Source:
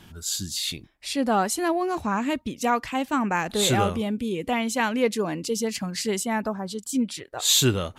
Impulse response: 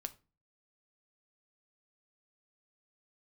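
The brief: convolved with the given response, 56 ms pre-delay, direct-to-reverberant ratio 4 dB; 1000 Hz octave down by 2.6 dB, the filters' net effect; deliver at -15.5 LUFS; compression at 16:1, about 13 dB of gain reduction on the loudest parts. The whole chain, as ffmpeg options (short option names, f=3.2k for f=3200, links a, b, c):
-filter_complex "[0:a]equalizer=f=1k:t=o:g=-3.5,acompressor=threshold=-29dB:ratio=16,asplit=2[a][b];[1:a]atrim=start_sample=2205,adelay=56[c];[b][c]afir=irnorm=-1:irlink=0,volume=-1.5dB[d];[a][d]amix=inputs=2:normalize=0,volume=16.5dB"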